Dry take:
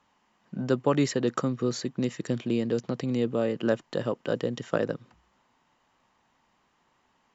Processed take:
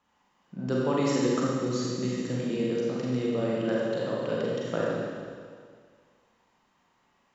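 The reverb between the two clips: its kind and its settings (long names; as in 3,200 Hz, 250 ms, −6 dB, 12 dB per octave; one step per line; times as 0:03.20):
four-comb reverb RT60 1.9 s, combs from 32 ms, DRR −5 dB
level −6 dB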